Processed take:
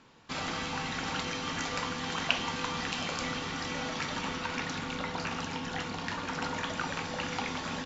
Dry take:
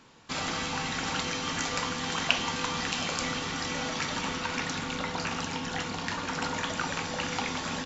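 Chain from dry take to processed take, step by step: distance through air 63 m; trim -2 dB

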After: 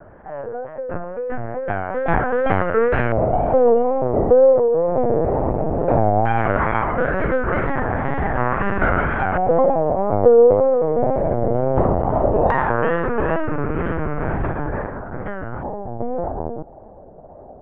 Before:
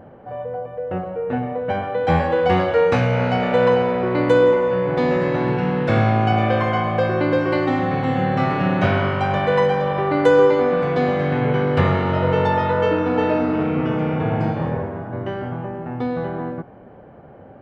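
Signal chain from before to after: LPC vocoder at 8 kHz pitch kept; LFO low-pass square 0.16 Hz 740–1600 Hz; wow and flutter 110 cents; trim -1.5 dB

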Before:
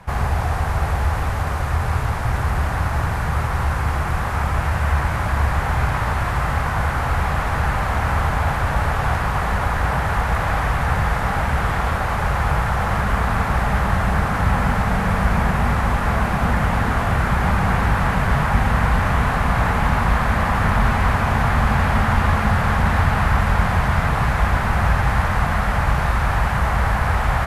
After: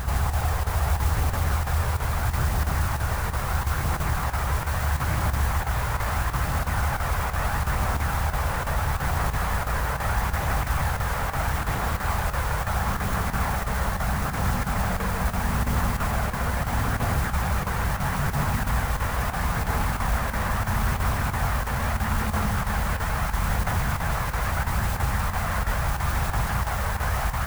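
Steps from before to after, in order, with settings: peak limiter -16 dBFS, peak gain reduction 11.5 dB; phaser 0.76 Hz, delay 2.2 ms, feedback 30%; modulation noise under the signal 15 dB; reverse echo 157 ms -5 dB; square tremolo 3 Hz, depth 60%, duty 90%; trim -3.5 dB

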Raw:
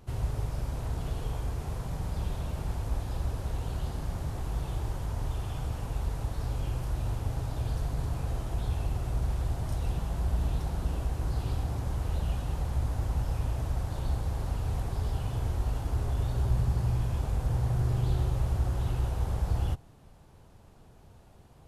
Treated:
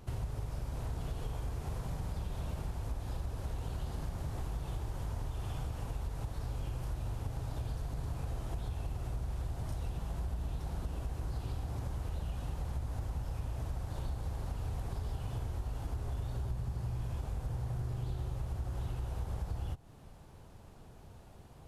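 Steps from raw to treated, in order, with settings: compression, threshold -35 dBFS, peak gain reduction 13.5 dB; trim +1 dB

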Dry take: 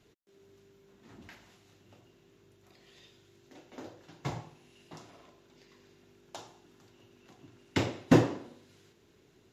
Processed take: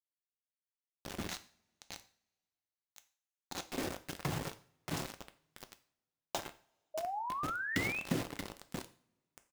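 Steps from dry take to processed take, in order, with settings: 6.38–7.43 s: median filter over 25 samples; bass shelf 220 Hz +4.5 dB; compression 16:1, threshold -40 dBFS, peak gain reduction 26.5 dB; rotary cabinet horn 8 Hz; feedback delay 629 ms, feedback 25%, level -9 dB; bit crusher 8-bit; 1.28–3.66 s: graphic EQ with 31 bands 400 Hz -5 dB, 800 Hz +6 dB, 4 kHz +8 dB, 6.3 kHz +8 dB; 6.94–8.01 s: painted sound rise 610–2700 Hz -48 dBFS; two-slope reverb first 0.42 s, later 1.9 s, from -27 dB, DRR 9 dB; trim +9.5 dB

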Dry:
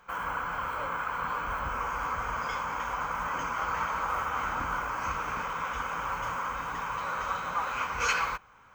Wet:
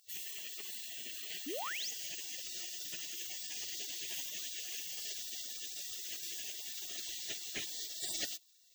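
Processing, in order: spectral gate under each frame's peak -30 dB weak; bass shelf 200 Hz -7.5 dB; painted sound rise, 1.46–1.91 s, 250–7300 Hz -53 dBFS; trim +12 dB

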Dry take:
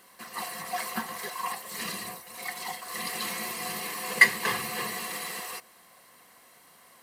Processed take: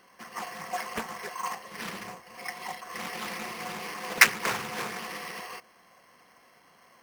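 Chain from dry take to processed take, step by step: brick-wall FIR low-pass 3.6 kHz; careless resampling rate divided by 6×, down filtered, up hold; loudspeaker Doppler distortion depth 0.84 ms

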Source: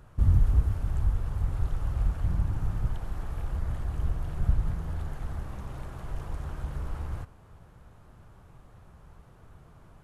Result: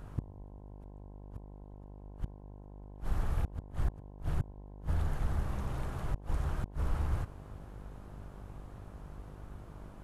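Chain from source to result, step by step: inverted gate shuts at -22 dBFS, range -35 dB; mains buzz 50 Hz, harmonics 21, -51 dBFS -6 dB/octave; trim +2 dB

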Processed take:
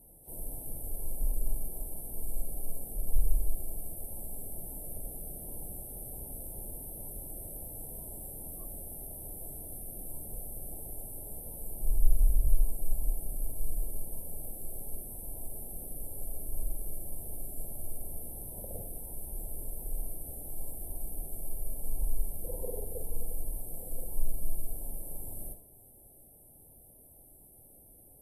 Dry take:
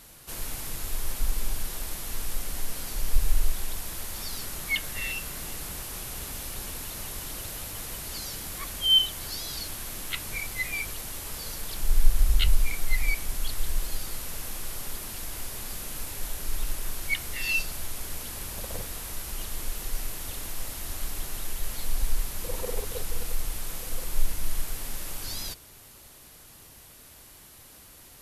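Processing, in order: inverse Chebyshev band-stop 1.7–4.5 kHz, stop band 60 dB; reverberation RT60 0.40 s, pre-delay 5 ms, DRR 8 dB; trim -5 dB; WMA 32 kbps 32 kHz

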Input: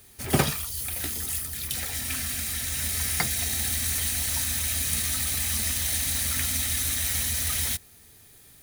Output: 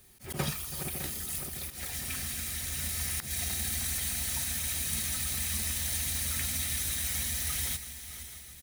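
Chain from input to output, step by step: backward echo that repeats 305 ms, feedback 71%, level -14 dB; bass shelf 190 Hz +4 dB; comb 5.5 ms, depth 33%; slow attack 132 ms; thinning echo 329 ms, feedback 65%, high-pass 200 Hz, level -16.5 dB; trim -6.5 dB

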